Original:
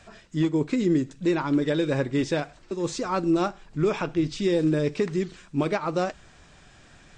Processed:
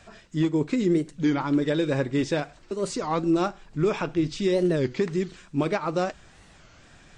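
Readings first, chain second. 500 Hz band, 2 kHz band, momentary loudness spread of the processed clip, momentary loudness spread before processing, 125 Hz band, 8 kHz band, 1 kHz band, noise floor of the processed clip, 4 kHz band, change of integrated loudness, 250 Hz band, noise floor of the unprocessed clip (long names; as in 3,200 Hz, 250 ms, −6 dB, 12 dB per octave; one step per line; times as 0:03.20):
0.0 dB, 0.0 dB, 7 LU, 7 LU, 0.0 dB, 0.0 dB, 0.0 dB, −53 dBFS, 0.0 dB, 0.0 dB, 0.0 dB, −54 dBFS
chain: wow of a warped record 33 1/3 rpm, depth 250 cents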